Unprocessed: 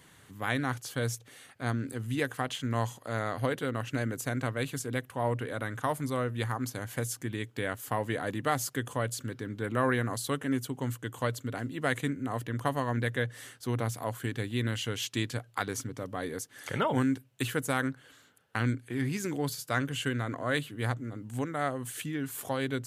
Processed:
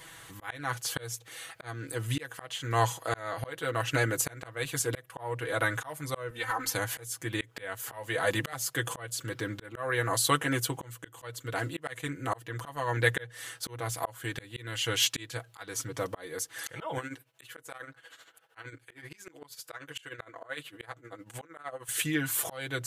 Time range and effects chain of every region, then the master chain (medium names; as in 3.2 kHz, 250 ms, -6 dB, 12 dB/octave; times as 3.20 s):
6.30–6.75 s: dynamic bell 1.9 kHz, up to +5 dB, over -50 dBFS, Q 0.98 + comb 3.9 ms, depth 85% + compression 10:1, threshold -32 dBFS
7.41–8.53 s: band-stop 310 Hz, Q 6.6 + three bands compressed up and down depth 100%
16.98–21.89 s: tone controls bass -10 dB, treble -4 dB + tremolo 13 Hz, depth 77%
whole clip: peaking EQ 200 Hz -14 dB 1.3 oct; comb 6.1 ms, depth 73%; slow attack 457 ms; trim +8 dB